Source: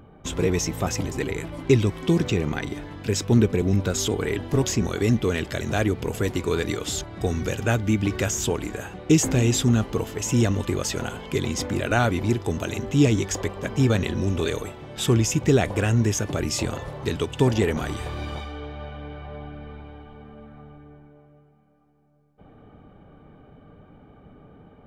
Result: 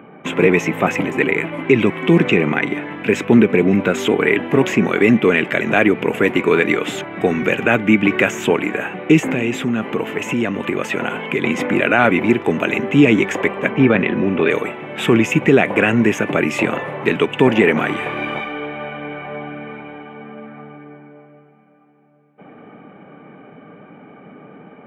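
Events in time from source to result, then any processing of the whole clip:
0:09.19–0:11.44: downward compressor 2.5 to 1, threshold −26 dBFS
0:13.71–0:14.50: high-frequency loss of the air 200 metres
whole clip: high-pass filter 170 Hz 24 dB per octave; high shelf with overshoot 3,400 Hz −12.5 dB, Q 3; boost into a limiter +11 dB; level −1 dB

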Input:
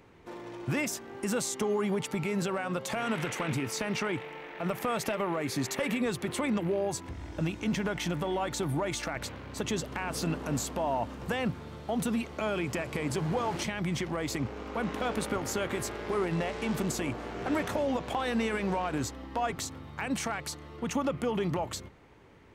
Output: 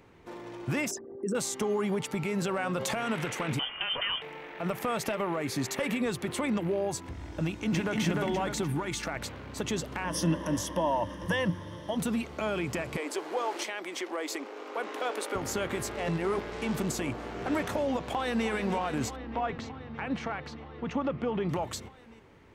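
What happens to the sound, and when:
0:00.91–0:01.35: spectral envelope exaggerated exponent 3
0:02.44–0:02.94: envelope flattener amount 70%
0:03.59–0:04.22: voice inversion scrambler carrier 3,300 Hz
0:07.42–0:07.99: delay throw 300 ms, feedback 50%, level −1.5 dB
0:08.64–0:09.05: parametric band 630 Hz −12.5 dB 0.37 octaves
0:10.04–0:11.97: EQ curve with evenly spaced ripples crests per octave 1.2, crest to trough 14 dB
0:12.97–0:15.35: Butterworth high-pass 310 Hz
0:15.97–0:16.52: reverse
0:18.04–0:18.47: delay throw 310 ms, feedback 85%, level −10 dB
0:19.16–0:21.49: high-frequency loss of the air 240 metres

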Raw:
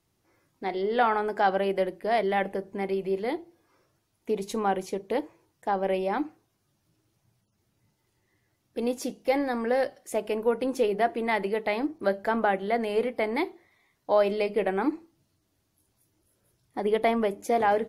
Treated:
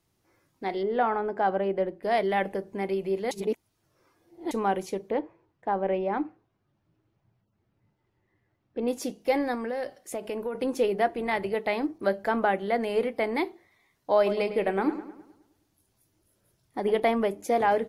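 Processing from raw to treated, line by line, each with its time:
0:00.83–0:02.03: low-pass filter 1,100 Hz 6 dB per octave
0:03.31–0:04.51: reverse
0:05.10–0:08.88: Bessel low-pass filter 1,900 Hz
0:09.54–0:10.55: downward compressor 5 to 1, threshold −28 dBFS
0:11.08–0:11.54: amplitude modulation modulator 270 Hz, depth 20%
0:14.16–0:17.00: feedback echo with a low-pass in the loop 105 ms, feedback 49%, low-pass 4,400 Hz, level −12 dB

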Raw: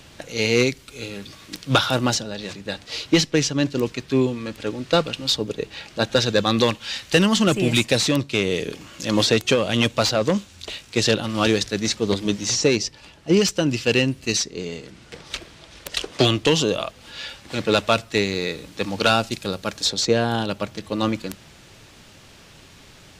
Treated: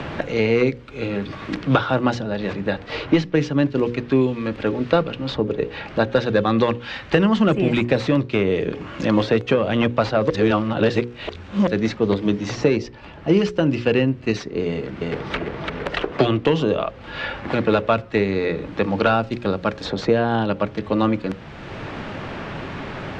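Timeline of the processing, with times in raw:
0:10.30–0:11.67: reverse
0:14.67–0:15.35: delay throw 340 ms, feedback 55%, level −4 dB
whole clip: low-pass filter 1,800 Hz 12 dB per octave; mains-hum notches 60/120/180/240/300/360/420/480/540 Hz; multiband upward and downward compressor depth 70%; level +3 dB

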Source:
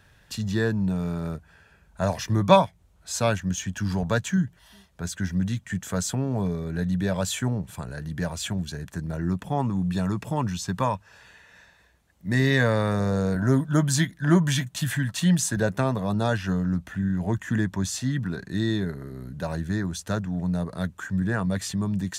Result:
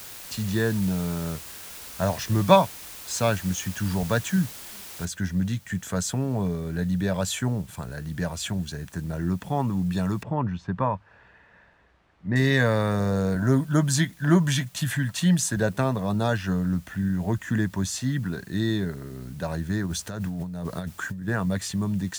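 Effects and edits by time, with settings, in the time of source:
0:05.05: noise floor change −41 dB −56 dB
0:10.23–0:12.36: low-pass filter 1,700 Hz
0:19.86–0:21.28: compressor whose output falls as the input rises −31 dBFS

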